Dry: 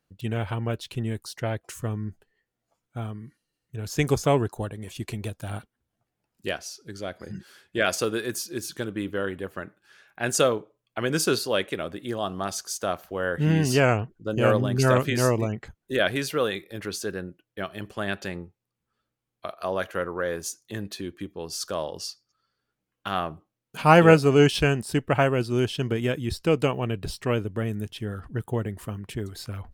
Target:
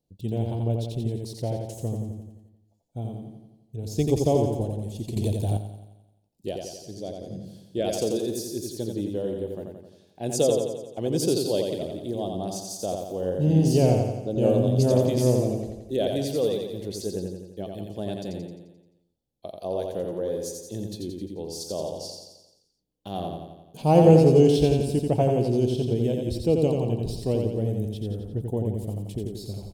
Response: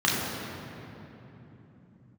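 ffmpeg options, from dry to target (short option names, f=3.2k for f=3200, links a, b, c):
-filter_complex "[0:a]firequalizer=gain_entry='entry(470,0);entry(790,-4);entry(1300,-28);entry(3600,-5)':delay=0.05:min_phase=1,asplit=2[a][b];[b]aecho=0:1:87|174|261|348|435|522|609|696:0.631|0.353|0.198|0.111|0.0621|0.0347|0.0195|0.0109[c];[a][c]amix=inputs=2:normalize=0,asettb=1/sr,asplit=3[d][e][f];[d]atrim=end=5.164[g];[e]atrim=start=5.16:end=5.57,asetpts=PTS-STARTPTS,afade=t=in:d=0.004:c=qsin,afade=t=out:st=0.406:d=0.004:c=qsin,acontrast=83[h];[f]atrim=start=5.566[i];[g][h]acrossfade=d=0.004:c1=hsin:c2=qsin[j];[j][i]acrossfade=d=0.004:c1=qsin:c2=hsin"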